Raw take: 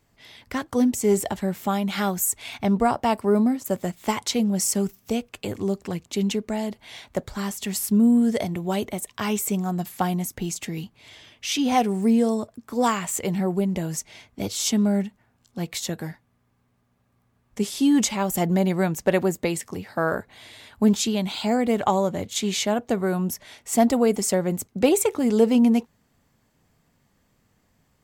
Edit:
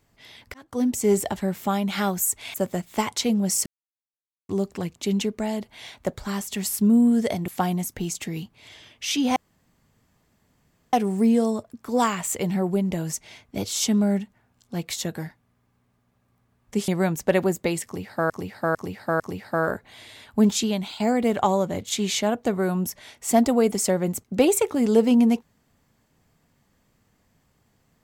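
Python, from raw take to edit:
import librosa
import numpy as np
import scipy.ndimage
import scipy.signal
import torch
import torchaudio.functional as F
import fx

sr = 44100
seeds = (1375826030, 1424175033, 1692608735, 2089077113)

y = fx.edit(x, sr, fx.fade_in_span(start_s=0.54, length_s=0.42),
    fx.cut(start_s=2.54, length_s=1.1),
    fx.silence(start_s=4.76, length_s=0.83),
    fx.cut(start_s=8.58, length_s=1.31),
    fx.insert_room_tone(at_s=11.77, length_s=1.57),
    fx.cut(start_s=17.72, length_s=0.95),
    fx.repeat(start_s=19.64, length_s=0.45, count=4),
    fx.fade_out_to(start_s=21.14, length_s=0.3, floor_db=-9.5), tone=tone)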